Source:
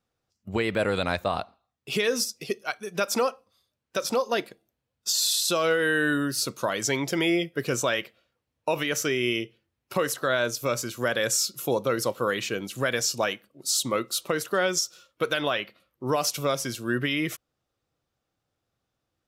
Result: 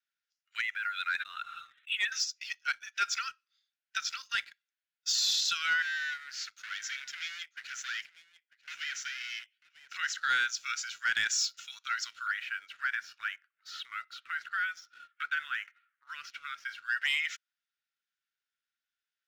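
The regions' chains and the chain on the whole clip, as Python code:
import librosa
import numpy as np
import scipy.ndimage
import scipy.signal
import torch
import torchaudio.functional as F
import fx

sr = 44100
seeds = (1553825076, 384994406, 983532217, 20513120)

y = fx.chain(x, sr, fx.spec_expand(power=1.5),
    fx.brickwall_lowpass(high_hz=4100.0),
    fx.sustainer(db_per_s=27.0), at=(0.61, 2.12))
y = fx.chain(y, sr, fx.tube_stage(drive_db=31.0, bias=0.8),
    fx.highpass(hz=590.0, slope=12),
    fx.echo_single(ms=943, db=-17.5), at=(5.82, 9.94))
y = fx.chain(y, sr, fx.lowpass(hz=1600.0, slope=12),
    fx.band_squash(depth_pct=100), at=(12.26, 16.86))
y = scipy.signal.sosfilt(scipy.signal.cheby1(5, 1.0, [1400.0, 7100.0], 'bandpass', fs=sr, output='sos'), y)
y = fx.high_shelf(y, sr, hz=4500.0, db=-9.5)
y = fx.leveller(y, sr, passes=1)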